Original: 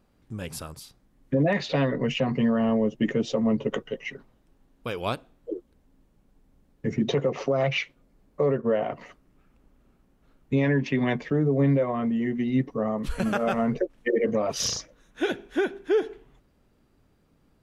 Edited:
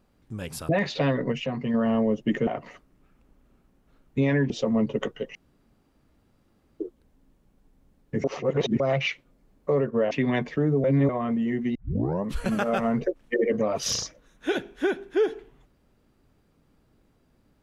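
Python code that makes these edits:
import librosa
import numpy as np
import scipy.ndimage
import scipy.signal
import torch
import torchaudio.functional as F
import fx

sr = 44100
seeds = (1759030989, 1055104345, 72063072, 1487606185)

y = fx.edit(x, sr, fx.cut(start_s=0.69, length_s=0.74),
    fx.clip_gain(start_s=2.06, length_s=0.42, db=-4.5),
    fx.room_tone_fill(start_s=4.06, length_s=1.45),
    fx.reverse_span(start_s=6.95, length_s=0.56),
    fx.move(start_s=8.82, length_s=2.03, to_s=3.21),
    fx.reverse_span(start_s=11.58, length_s=0.25),
    fx.tape_start(start_s=12.49, length_s=0.5), tone=tone)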